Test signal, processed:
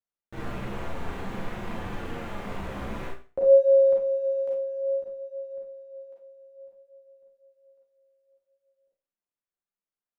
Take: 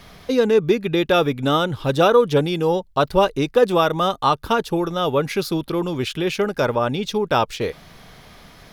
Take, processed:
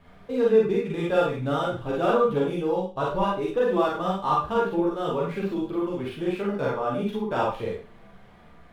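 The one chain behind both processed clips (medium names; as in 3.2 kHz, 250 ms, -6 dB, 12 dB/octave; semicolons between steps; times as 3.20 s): median filter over 9 samples; treble shelf 3.3 kHz -11 dB; chorus voices 2, 0.53 Hz, delay 12 ms, depth 3.4 ms; Schroeder reverb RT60 0.35 s, combs from 32 ms, DRR -2.5 dB; trim -6.5 dB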